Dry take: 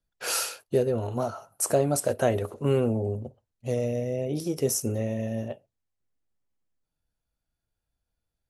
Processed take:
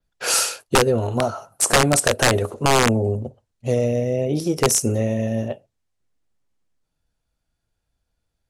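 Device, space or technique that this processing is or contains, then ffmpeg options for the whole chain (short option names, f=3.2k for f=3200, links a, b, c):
overflowing digital effects unit: -af "aeval=exprs='(mod(6.31*val(0)+1,2)-1)/6.31':c=same,lowpass=10k,adynamicequalizer=threshold=0.00794:dfrequency=8400:dqfactor=1.1:tfrequency=8400:tqfactor=1.1:attack=5:release=100:ratio=0.375:range=2.5:mode=boostabove:tftype=bell,volume=7.5dB"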